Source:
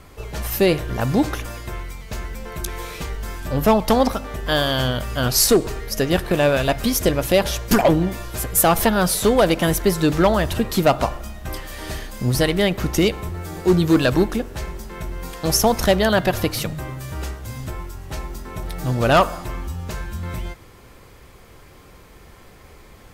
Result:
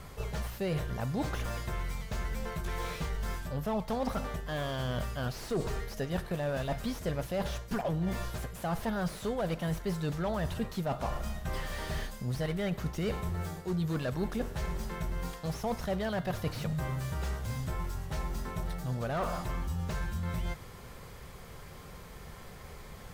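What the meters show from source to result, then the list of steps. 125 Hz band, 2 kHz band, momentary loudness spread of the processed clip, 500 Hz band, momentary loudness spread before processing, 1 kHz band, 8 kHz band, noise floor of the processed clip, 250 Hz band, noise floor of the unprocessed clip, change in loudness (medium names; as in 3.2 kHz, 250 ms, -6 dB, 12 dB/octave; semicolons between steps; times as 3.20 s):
-9.5 dB, -14.5 dB, 8 LU, -16.0 dB, 16 LU, -15.0 dB, -21.5 dB, -48 dBFS, -14.5 dB, -46 dBFS, -15.5 dB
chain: graphic EQ with 31 bands 160 Hz +6 dB, 315 Hz -9 dB, 2.5 kHz -3 dB; reverse; compression 6:1, threshold -29 dBFS, peak gain reduction 17.5 dB; reverse; slew-rate limiter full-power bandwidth 37 Hz; trim -1.5 dB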